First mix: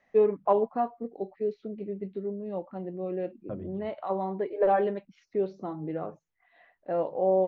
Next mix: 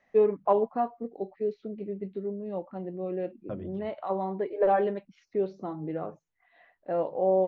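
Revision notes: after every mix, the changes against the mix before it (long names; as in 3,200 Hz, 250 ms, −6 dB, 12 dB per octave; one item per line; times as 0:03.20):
second voice: remove low-pass filter 1,400 Hz 6 dB per octave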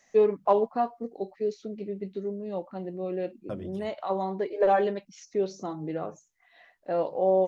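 master: remove high-frequency loss of the air 390 metres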